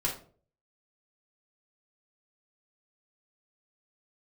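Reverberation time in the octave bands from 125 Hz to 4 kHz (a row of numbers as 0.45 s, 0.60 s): 0.65 s, 0.50 s, 0.55 s, 0.40 s, 0.30 s, 0.30 s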